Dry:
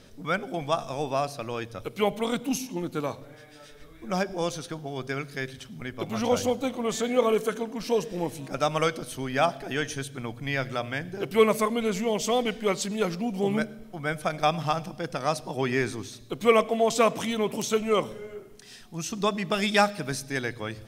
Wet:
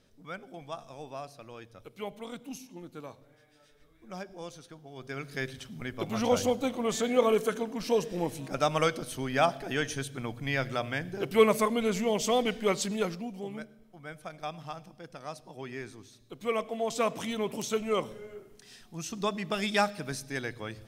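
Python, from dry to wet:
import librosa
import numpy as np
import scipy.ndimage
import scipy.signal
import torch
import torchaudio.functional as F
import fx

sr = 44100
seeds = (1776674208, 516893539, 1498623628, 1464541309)

y = fx.gain(x, sr, db=fx.line((4.87, -13.5), (5.36, -1.5), (12.93, -1.5), (13.51, -14.0), (16.05, -14.0), (17.29, -5.0)))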